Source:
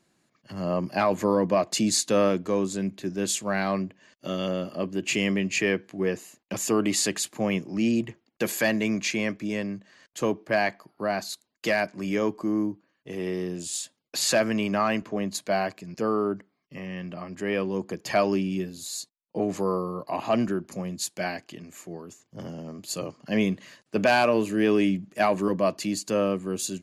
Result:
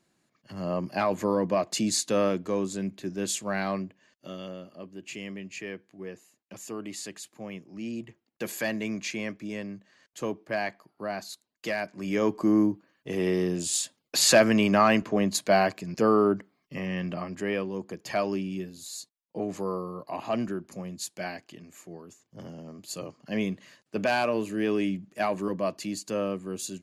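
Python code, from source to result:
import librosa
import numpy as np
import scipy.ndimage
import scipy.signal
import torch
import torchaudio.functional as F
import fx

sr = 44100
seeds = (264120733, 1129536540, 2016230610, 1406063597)

y = fx.gain(x, sr, db=fx.line((3.68, -3.0), (4.72, -13.5), (7.66, -13.5), (8.54, -6.0), (11.85, -6.0), (12.45, 4.0), (17.15, 4.0), (17.71, -5.0)))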